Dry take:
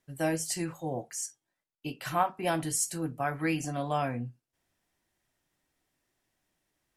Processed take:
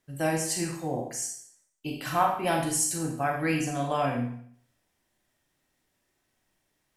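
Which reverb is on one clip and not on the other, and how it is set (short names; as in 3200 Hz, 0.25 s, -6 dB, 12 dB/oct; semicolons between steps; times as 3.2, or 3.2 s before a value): Schroeder reverb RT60 0.59 s, combs from 29 ms, DRR 1.5 dB; gain +1.5 dB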